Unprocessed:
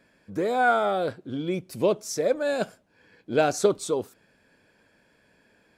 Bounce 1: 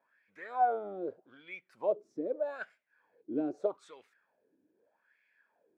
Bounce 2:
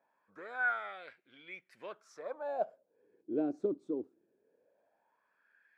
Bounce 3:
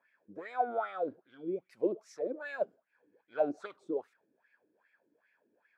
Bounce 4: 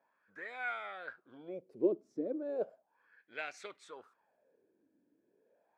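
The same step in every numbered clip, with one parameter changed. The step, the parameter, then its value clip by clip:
wah-wah, rate: 0.81 Hz, 0.2 Hz, 2.5 Hz, 0.35 Hz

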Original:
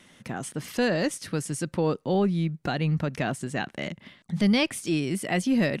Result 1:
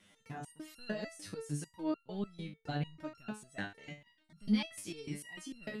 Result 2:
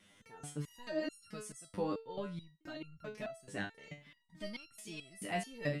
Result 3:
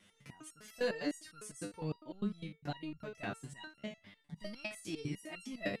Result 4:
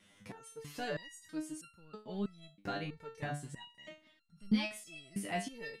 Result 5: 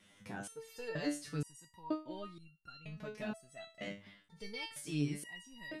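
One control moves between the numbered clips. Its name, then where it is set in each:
resonator arpeggio, rate: 6.7 Hz, 4.6 Hz, 9.9 Hz, 3.1 Hz, 2.1 Hz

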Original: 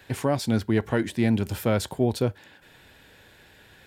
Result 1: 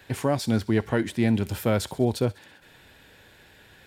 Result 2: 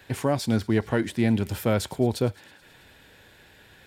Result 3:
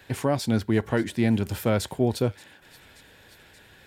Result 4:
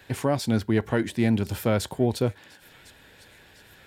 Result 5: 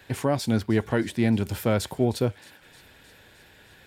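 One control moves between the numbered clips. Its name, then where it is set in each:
feedback echo behind a high-pass, time: 66 ms, 108 ms, 579 ms, 1054 ms, 310 ms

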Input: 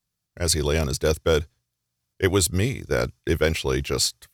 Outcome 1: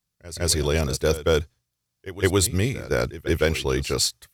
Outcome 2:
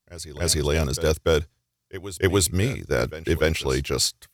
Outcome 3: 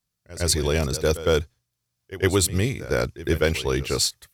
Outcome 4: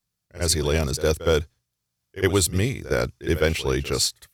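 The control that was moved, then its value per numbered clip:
pre-echo, time: 163 ms, 294 ms, 109 ms, 62 ms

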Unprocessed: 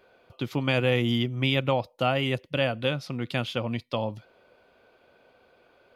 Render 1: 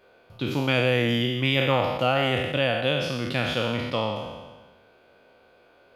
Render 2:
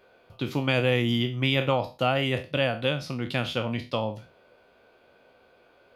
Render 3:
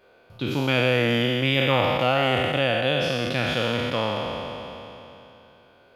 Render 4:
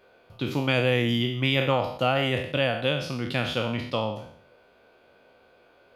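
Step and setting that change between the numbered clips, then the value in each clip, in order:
spectral sustain, RT60: 1.36 s, 0.31 s, 3.15 s, 0.65 s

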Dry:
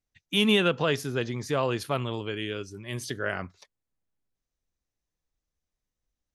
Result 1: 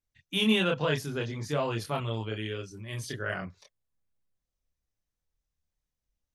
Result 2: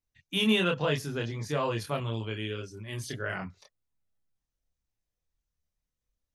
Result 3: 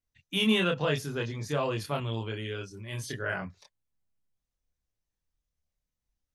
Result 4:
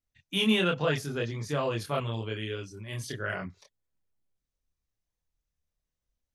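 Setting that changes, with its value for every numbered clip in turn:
chorus, rate: 1 Hz, 0.5 Hz, 0.28 Hz, 2.1 Hz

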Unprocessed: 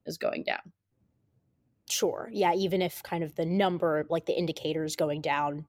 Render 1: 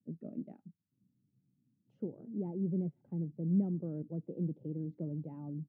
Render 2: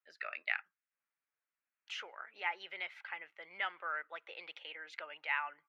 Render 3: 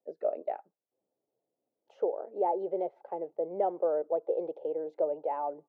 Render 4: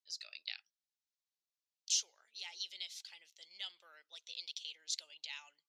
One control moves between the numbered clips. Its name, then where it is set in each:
Butterworth band-pass, frequency: 190 Hz, 1.8 kHz, 580 Hz, 4.9 kHz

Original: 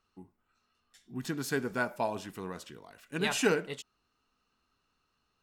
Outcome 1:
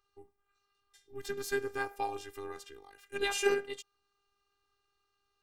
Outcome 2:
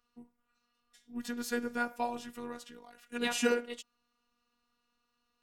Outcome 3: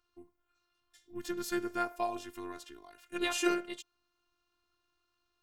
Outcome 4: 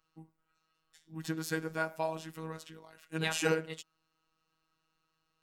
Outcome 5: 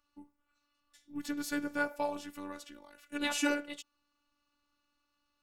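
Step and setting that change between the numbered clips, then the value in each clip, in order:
robot voice, frequency: 400 Hz, 240 Hz, 350 Hz, 160 Hz, 290 Hz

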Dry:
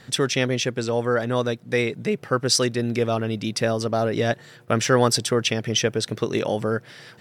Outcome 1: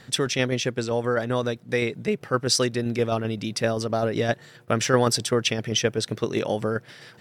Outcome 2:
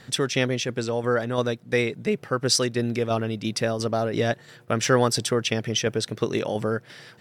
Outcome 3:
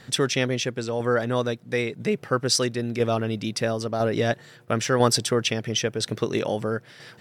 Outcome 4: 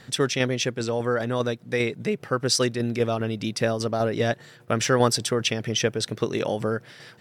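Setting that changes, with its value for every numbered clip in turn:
tremolo, rate: 7.7 Hz, 2.9 Hz, 1 Hz, 5 Hz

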